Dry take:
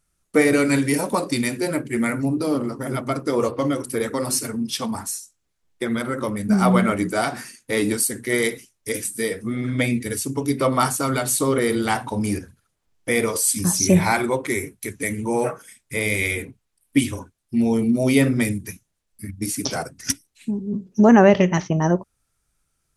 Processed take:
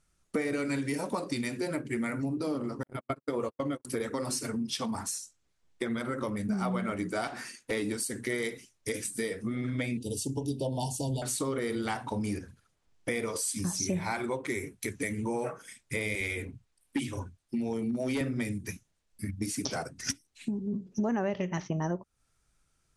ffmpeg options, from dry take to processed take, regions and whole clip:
ffmpeg -i in.wav -filter_complex "[0:a]asettb=1/sr,asplit=3[link_01][link_02][link_03];[link_01]atrim=end=2.834[link_04];[link_02]atrim=start=2.83:end=3.85,asetpts=PTS-STARTPTS,afade=type=in:duration=0.004:curve=qsin,afade=type=out:start_time=1.016:duration=0.004:curve=qsin,agate=range=-59dB:threshold=-23dB:ratio=16:release=100:detection=peak,equalizer=frequency=5500:width_type=o:width=0.47:gain=-12.5[link_05];[link_03]atrim=start=3.846[link_06];[link_04][link_05]acrossfade=duration=0.004:curve1=hsin:curve2=qsin[link_07];[link_07][link_06]acrossfade=duration=0.004:curve1=qsin:curve2=hsin,asettb=1/sr,asplit=3[link_08][link_09][link_10];[link_08]atrim=end=7.274[link_11];[link_09]atrim=start=7.27:end=7.71,asetpts=PTS-STARTPTS,afade=type=in:duration=0.004:curve=qsin,afade=type=out:start_time=0.436:duration=0.004:curve=qsin,bass=frequency=250:gain=-7,treble=frequency=4000:gain=-2,volume=28.5dB,asoftclip=hard,volume=-28.5dB[link_12];[link_10]atrim=start=7.706[link_13];[link_11][link_12]acrossfade=duration=0.004:curve1=hsin:curve2=qsin[link_14];[link_14][link_13]acrossfade=duration=0.004:curve1=qsin:curve2=hsin,asettb=1/sr,asplit=3[link_15][link_16][link_17];[link_15]atrim=end=9.974[link_18];[link_16]atrim=start=9.97:end=11.22,asetpts=PTS-STARTPTS,afade=type=in:duration=0.004:curve=qsin,afade=type=out:start_time=1.246:duration=0.004:curve=qsin,asuperstop=centerf=1600:order=20:qfactor=0.91,asubboost=boost=9.5:cutoff=140[link_19];[link_17]atrim=start=11.216[link_20];[link_18][link_19]acrossfade=duration=0.004:curve1=hsin:curve2=qsin[link_21];[link_21][link_20]acrossfade=duration=0.004:curve1=qsin:curve2=hsin,asettb=1/sr,asplit=3[link_22][link_23][link_24];[link_22]atrim=end=16.154[link_25];[link_23]atrim=start=16.15:end=18.21,asetpts=PTS-STARTPTS,afade=type=in:duration=0.004:curve=qsin,afade=type=out:start_time=2.056:duration=0.004:curve=qsin,acrossover=split=170[link_26][link_27];[link_26]adelay=50[link_28];[link_28][link_27]amix=inputs=2:normalize=0,atrim=end_sample=90846,asoftclip=type=hard:threshold=-14dB[link_29];[link_24]atrim=start=18.206[link_30];[link_25][link_29]acrossfade=duration=0.004:curve1=hsin:curve2=qsin[link_31];[link_31][link_30]acrossfade=duration=0.004:curve1=qsin:curve2=hsin,lowpass=8400,acompressor=threshold=-31dB:ratio=4" out.wav

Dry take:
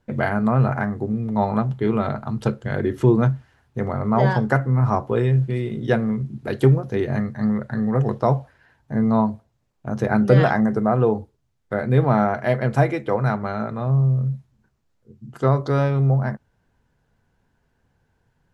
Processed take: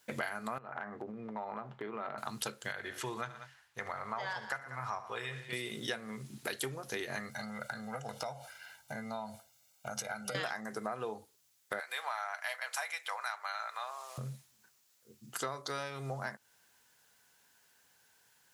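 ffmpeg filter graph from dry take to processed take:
ffmpeg -i in.wav -filter_complex "[0:a]asettb=1/sr,asplit=3[link_01][link_02][link_03];[link_01]atrim=end=0.584[link_04];[link_02]atrim=start=0.58:end=2.18,asetpts=PTS-STARTPTS,afade=type=in:duration=0.004:curve=qsin,afade=type=out:start_time=1.596:duration=0.004:curve=qsin,lowpass=1400,equalizer=frequency=73:width=0.86:gain=-10.5,acompressor=threshold=-27dB:ratio=10:attack=3.2:release=140:knee=1:detection=peak[link_05];[link_03]atrim=start=2.176[link_06];[link_04][link_05]acrossfade=duration=0.004:curve1=hsin:curve2=qsin[link_07];[link_07][link_06]acrossfade=duration=0.004:curve1=qsin:curve2=hsin,asettb=1/sr,asplit=3[link_08][link_09][link_10];[link_08]atrim=end=2.724[link_11];[link_09]atrim=start=2.72:end=5.53,asetpts=PTS-STARTPTS,afade=type=in:duration=0.004:curve=qsin,afade=type=out:start_time=2.806:duration=0.004:curve=qsin,lowpass=frequency=1900:poles=1,equalizer=frequency=270:width=0.54:gain=-14.5,aecho=1:1:72|118|188:0.168|0.133|0.133,atrim=end_sample=123921[link_12];[link_10]atrim=start=5.526[link_13];[link_11][link_12]acrossfade=duration=0.004:curve1=hsin:curve2=qsin[link_14];[link_14][link_13]acrossfade=duration=0.004:curve1=qsin:curve2=hsin,asettb=1/sr,asplit=3[link_15][link_16][link_17];[link_15]atrim=end=7.294[link_18];[link_16]atrim=start=7.29:end=10.35,asetpts=PTS-STARTPTS,afade=type=in:duration=0.004:curve=qsin,afade=type=out:start_time=3.056:duration=0.004:curve=qsin,aecho=1:1:1.4:0.77,atrim=end_sample=134946,acompressor=threshold=-27dB:ratio=6:attack=3.2:release=140:knee=1:detection=peak,asuperstop=centerf=1800:order=12:qfactor=7.4[link_19];[link_17]atrim=start=10.346[link_20];[link_18][link_19]acrossfade=duration=0.004:curve1=hsin:curve2=qsin[link_21];[link_21][link_20]acrossfade=duration=0.004:curve1=qsin:curve2=hsin,asettb=1/sr,asplit=3[link_22][link_23][link_24];[link_22]atrim=end=11.804[link_25];[link_23]atrim=start=11.8:end=14.18,asetpts=PTS-STARTPTS,afade=type=in:duration=0.004:curve=qsin,afade=type=out:start_time=2.376:duration=0.004:curve=qsin,highpass=frequency=770:width=0.5412,highpass=frequency=770:width=1.3066,acompressor=mode=upward:threshold=-38dB:ratio=2.5:attack=3.2:release=140:knee=2.83:detection=peak[link_26];[link_24]atrim=start=14.176[link_27];[link_25][link_26]acrossfade=duration=0.004:curve1=hsin:curve2=qsin[link_28];[link_28][link_27]acrossfade=duration=0.004:curve1=qsin:curve2=hsin,aderivative,acompressor=threshold=-52dB:ratio=6,volume=16.5dB" out.wav

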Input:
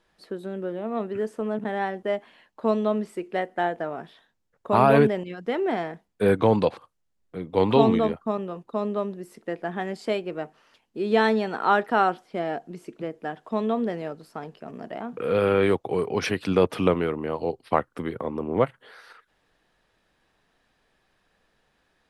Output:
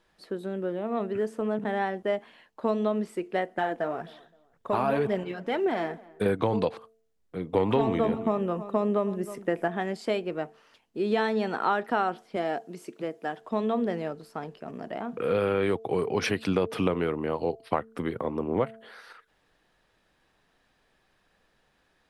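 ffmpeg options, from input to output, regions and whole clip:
ffmpeg -i in.wav -filter_complex "[0:a]asettb=1/sr,asplit=3[link_01][link_02][link_03];[link_01]atrim=end=3.564[link_04];[link_02]atrim=start=3.56:end=6.26,asetpts=PTS-STARTPTS,afade=type=in:duration=0.004:curve=qsin,afade=type=out:start_time=2.696:duration=0.004:curve=qsin,acompressor=threshold=-22dB:ratio=2:attack=3.2:release=140:knee=1:detection=peak,aphaser=in_gain=1:out_gain=1:delay=4.7:decay=0.41:speed=1.9:type=triangular,asplit=2[link_05][link_06];[link_06]adelay=260,lowpass=frequency=2400:poles=1,volume=-22.5dB,asplit=2[link_07][link_08];[link_08]adelay=260,lowpass=frequency=2400:poles=1,volume=0.32[link_09];[link_05][link_07][link_09]amix=inputs=3:normalize=0,atrim=end_sample=119070[link_10];[link_03]atrim=start=6.256[link_11];[link_04][link_10]acrossfade=duration=0.004:curve1=hsin:curve2=qsin[link_12];[link_12][link_11]acrossfade=duration=0.004:curve1=qsin:curve2=hsin,asettb=1/sr,asplit=3[link_13][link_14][link_15];[link_13]atrim=end=7.534[link_16];[link_14]atrim=start=7.53:end=9.68,asetpts=PTS-STARTPTS,afade=type=in:duration=0.004:curve=qsin,afade=type=out:start_time=2.146:duration=0.004:curve=qsin,equalizer=frequency=4200:width=2.3:gain=-8,acontrast=47,aecho=1:1:316:0.119,atrim=end_sample=94815[link_17];[link_15]atrim=start=9.676[link_18];[link_16][link_17]acrossfade=duration=0.004:curve1=hsin:curve2=qsin[link_19];[link_19][link_18]acrossfade=duration=0.004:curve1=qsin:curve2=hsin,asettb=1/sr,asplit=3[link_20][link_21][link_22];[link_20]atrim=end=12.364[link_23];[link_21]atrim=start=12.36:end=13.41,asetpts=PTS-STARTPTS,afade=type=in:duration=0.004:curve=qsin,afade=type=out:start_time=1.046:duration=0.004:curve=qsin,highpass=97,bass=frequency=250:gain=-5,treble=frequency=4000:gain=5[link_24];[link_22]atrim=start=13.406[link_25];[link_23][link_24]acrossfade=duration=0.004:curve1=hsin:curve2=qsin[link_26];[link_26][link_25]acrossfade=duration=0.004:curve1=qsin:curve2=hsin,bandreject=frequency=223.4:width_type=h:width=4,bandreject=frequency=446.8:width_type=h:width=4,bandreject=frequency=670.2:width_type=h:width=4,acompressor=threshold=-21dB:ratio=6" out.wav

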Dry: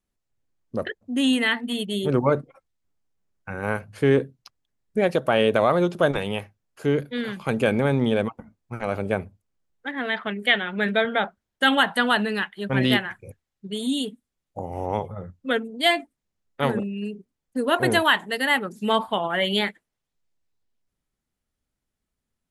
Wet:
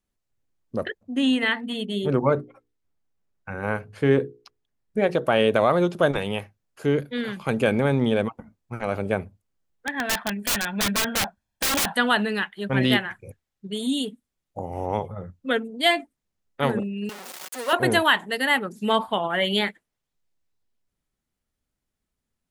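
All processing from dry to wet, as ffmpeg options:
ffmpeg -i in.wav -filter_complex "[0:a]asettb=1/sr,asplit=3[link_01][link_02][link_03];[link_01]atrim=end=1.034[link_04];[link_02]atrim=start=1.03:end=5.25,asetpts=PTS-STARTPTS,afade=type=in:duration=0.004:curve=qsin,afade=type=out:start_time=4.216:duration=0.004:curve=qsin,acrossover=split=8000[link_05][link_06];[link_06]acompressor=threshold=-52dB:ratio=4:attack=1:release=60[link_07];[link_05][link_07]amix=inputs=2:normalize=0,highshelf=frequency=4600:gain=-6,bandreject=frequency=60:width_type=h:width=6,bandreject=frequency=120:width_type=h:width=6,bandreject=frequency=180:width_type=h:width=6,bandreject=frequency=240:width_type=h:width=6,bandreject=frequency=300:width_type=h:width=6,bandreject=frequency=360:width_type=h:width=6,bandreject=frequency=420:width_type=h:width=6,bandreject=frequency=480:width_type=h:width=6[link_08];[link_03]atrim=start=5.246[link_09];[link_04][link_08]acrossfade=duration=0.004:curve1=hsin:curve2=qsin[link_10];[link_10][link_09]acrossfade=duration=0.004:curve1=qsin:curve2=hsin,asettb=1/sr,asplit=3[link_11][link_12][link_13];[link_11]atrim=end=9.874[link_14];[link_12]atrim=start=9.87:end=11.93,asetpts=PTS-STARTPTS,afade=type=in:duration=0.004:curve=qsin,afade=type=out:start_time=2.056:duration=0.004:curve=qsin,aecho=1:1:1.2:0.56,atrim=end_sample=90846,aeval=exprs='(mod(7.5*val(0)+1,2)-1)/7.5':channel_layout=same[link_15];[link_13]atrim=start=11.926[link_16];[link_14][link_15]acrossfade=duration=0.004:curve1=hsin:curve2=qsin[link_17];[link_17][link_16]acrossfade=duration=0.004:curve1=qsin:curve2=hsin,asettb=1/sr,asplit=3[link_18][link_19][link_20];[link_18]atrim=end=17.094[link_21];[link_19]atrim=start=17.09:end=17.73,asetpts=PTS-STARTPTS,afade=type=in:duration=0.004:curve=qsin,afade=type=out:start_time=0.636:duration=0.004:curve=qsin,aeval=exprs='val(0)+0.5*0.0473*sgn(val(0))':channel_layout=same,highpass=660,aecho=1:1:5.4:0.35,atrim=end_sample=28224[link_22];[link_20]atrim=start=17.726[link_23];[link_21][link_22]acrossfade=duration=0.004:curve1=hsin:curve2=qsin[link_24];[link_24][link_23]acrossfade=duration=0.004:curve1=qsin:curve2=hsin" out.wav

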